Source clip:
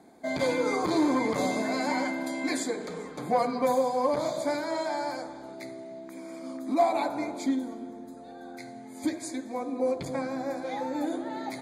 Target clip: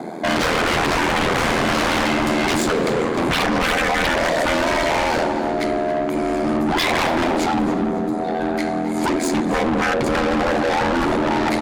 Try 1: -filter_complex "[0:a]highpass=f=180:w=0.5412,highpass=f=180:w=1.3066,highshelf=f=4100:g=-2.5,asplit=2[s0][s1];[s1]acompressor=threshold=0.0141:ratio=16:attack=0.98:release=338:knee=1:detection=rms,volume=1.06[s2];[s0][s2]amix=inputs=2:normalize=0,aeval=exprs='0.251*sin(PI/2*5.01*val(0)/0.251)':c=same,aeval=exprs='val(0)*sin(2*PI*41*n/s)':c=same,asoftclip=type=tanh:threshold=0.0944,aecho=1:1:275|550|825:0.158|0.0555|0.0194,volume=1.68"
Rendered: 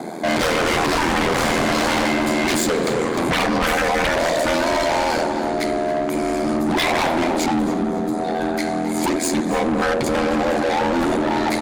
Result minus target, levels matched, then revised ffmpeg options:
compression: peak gain reduction +9.5 dB; 8 kHz band +3.0 dB
-filter_complex "[0:a]highpass=f=180:w=0.5412,highpass=f=180:w=1.3066,highshelf=f=4100:g=-12,asplit=2[s0][s1];[s1]acompressor=threshold=0.0447:ratio=16:attack=0.98:release=338:knee=1:detection=rms,volume=1.06[s2];[s0][s2]amix=inputs=2:normalize=0,aeval=exprs='0.251*sin(PI/2*5.01*val(0)/0.251)':c=same,aeval=exprs='val(0)*sin(2*PI*41*n/s)':c=same,asoftclip=type=tanh:threshold=0.0944,aecho=1:1:275|550|825:0.158|0.0555|0.0194,volume=1.68"

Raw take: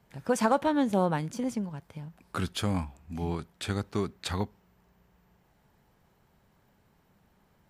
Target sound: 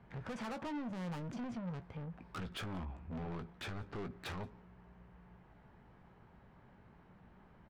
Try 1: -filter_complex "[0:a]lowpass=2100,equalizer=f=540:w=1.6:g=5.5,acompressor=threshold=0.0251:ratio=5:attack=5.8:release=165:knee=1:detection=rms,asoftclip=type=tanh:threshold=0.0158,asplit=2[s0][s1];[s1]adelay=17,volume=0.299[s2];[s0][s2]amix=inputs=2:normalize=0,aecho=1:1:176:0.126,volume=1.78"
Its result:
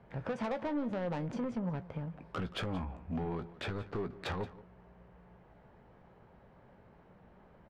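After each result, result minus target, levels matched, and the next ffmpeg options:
echo-to-direct +8 dB; 500 Hz band +3.5 dB; saturation: distortion -5 dB
-filter_complex "[0:a]lowpass=2100,equalizer=f=540:w=1.6:g=5.5,acompressor=threshold=0.0251:ratio=5:attack=5.8:release=165:knee=1:detection=rms,asoftclip=type=tanh:threshold=0.0158,asplit=2[s0][s1];[s1]adelay=17,volume=0.299[s2];[s0][s2]amix=inputs=2:normalize=0,aecho=1:1:176:0.0501,volume=1.78"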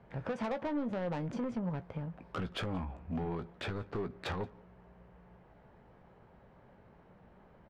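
500 Hz band +3.5 dB; saturation: distortion -5 dB
-filter_complex "[0:a]lowpass=2100,equalizer=f=540:w=1.6:g=-2.5,acompressor=threshold=0.0251:ratio=5:attack=5.8:release=165:knee=1:detection=rms,asoftclip=type=tanh:threshold=0.0158,asplit=2[s0][s1];[s1]adelay=17,volume=0.299[s2];[s0][s2]amix=inputs=2:normalize=0,aecho=1:1:176:0.0501,volume=1.78"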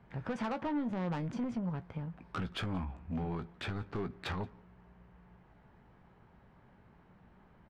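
saturation: distortion -5 dB
-filter_complex "[0:a]lowpass=2100,equalizer=f=540:w=1.6:g=-2.5,acompressor=threshold=0.0251:ratio=5:attack=5.8:release=165:knee=1:detection=rms,asoftclip=type=tanh:threshold=0.00562,asplit=2[s0][s1];[s1]adelay=17,volume=0.299[s2];[s0][s2]amix=inputs=2:normalize=0,aecho=1:1:176:0.0501,volume=1.78"

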